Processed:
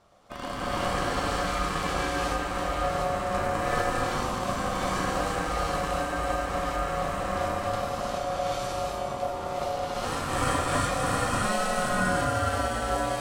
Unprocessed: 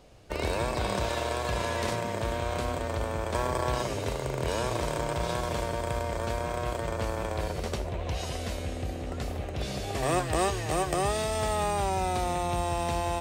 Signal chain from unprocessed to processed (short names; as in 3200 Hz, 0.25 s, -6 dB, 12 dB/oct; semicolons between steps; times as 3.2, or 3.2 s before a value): non-linear reverb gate 0.45 s rising, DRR -7.5 dB; ring modulator 640 Hz; gain -4 dB